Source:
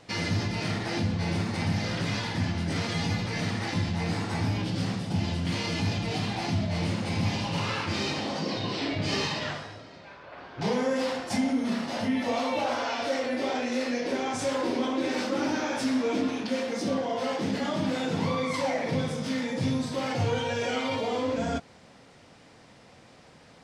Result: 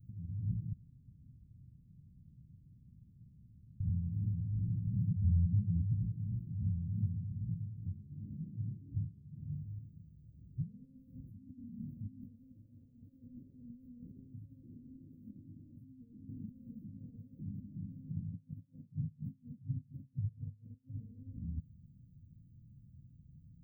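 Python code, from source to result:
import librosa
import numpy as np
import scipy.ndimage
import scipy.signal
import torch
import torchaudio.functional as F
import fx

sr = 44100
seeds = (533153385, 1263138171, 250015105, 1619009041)

y = fx.spec_expand(x, sr, power=2.2, at=(5.11, 5.94))
y = fx.tremolo_db(y, sr, hz=4.2, depth_db=31, at=(18.31, 20.97))
y = fx.edit(y, sr, fx.room_tone_fill(start_s=0.73, length_s=3.07), tone=tone)
y = fx.high_shelf(y, sr, hz=2300.0, db=11.0)
y = fx.over_compress(y, sr, threshold_db=-30.0, ratio=-0.5)
y = scipy.signal.sosfilt(scipy.signal.cheby2(4, 80, [800.0, 7900.0], 'bandstop', fs=sr, output='sos'), y)
y = F.gain(torch.from_numpy(y), 1.5).numpy()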